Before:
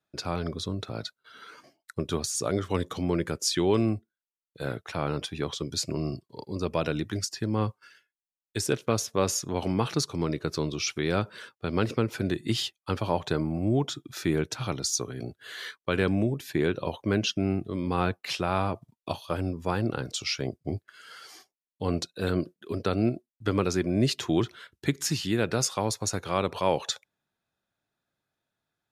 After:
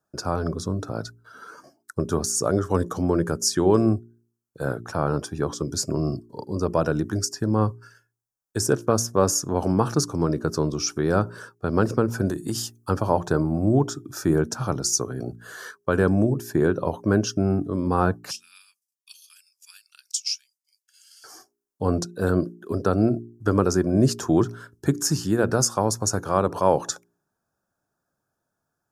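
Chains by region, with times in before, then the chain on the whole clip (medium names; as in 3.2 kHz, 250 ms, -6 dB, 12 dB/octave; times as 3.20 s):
12.27–12.90 s: treble shelf 6 kHz +11.5 dB + compression 4:1, threshold -27 dBFS
18.31–21.24 s: elliptic high-pass 2.5 kHz, stop band 80 dB + transient shaper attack +4 dB, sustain -4 dB
whole clip: high-order bell 2.9 kHz -16 dB 1.3 oct; band-stop 2 kHz, Q 12; de-hum 58.13 Hz, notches 7; trim +6 dB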